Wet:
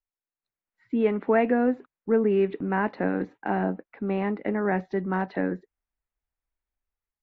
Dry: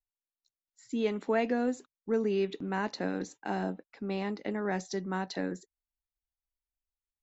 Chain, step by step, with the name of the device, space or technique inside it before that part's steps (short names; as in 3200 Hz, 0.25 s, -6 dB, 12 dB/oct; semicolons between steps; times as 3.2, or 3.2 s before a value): action camera in a waterproof case (LPF 2300 Hz 24 dB/oct; AGC gain up to 7 dB; AAC 48 kbps 32000 Hz)